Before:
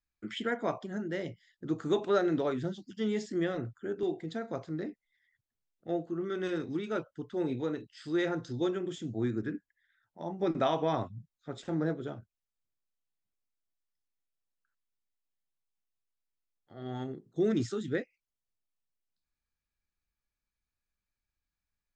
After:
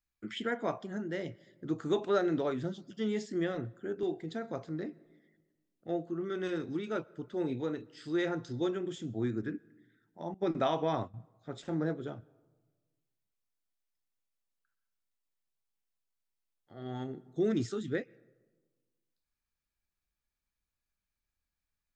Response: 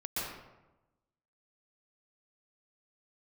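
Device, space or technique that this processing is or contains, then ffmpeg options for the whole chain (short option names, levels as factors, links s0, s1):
ducked reverb: -filter_complex "[0:a]asplit=3[s0][s1][s2];[1:a]atrim=start_sample=2205[s3];[s1][s3]afir=irnorm=-1:irlink=0[s4];[s2]apad=whole_len=968350[s5];[s4][s5]sidechaincompress=threshold=0.00631:ratio=16:attack=34:release=1090,volume=0.178[s6];[s0][s6]amix=inputs=2:normalize=0,asettb=1/sr,asplit=3[s7][s8][s9];[s7]atrim=end=10.344[s10];[s8]atrim=start=10.34:end=11.14,asetpts=PTS-STARTPTS,afade=t=in:d=0.004:c=qsin,afade=t=out:st=0.796:d=0.004:c=qsin,agate=range=0.0224:threshold=0.0224:ratio=3:detection=peak[s11];[s9]atrim=start=11.136[s12];[s10][s11]acrossfade=d=0.004:c1=hsin:c2=qsin[s13];[s13][s12]acrossfade=d=0.004:c1=qsin:c2=hsin,volume=0.841"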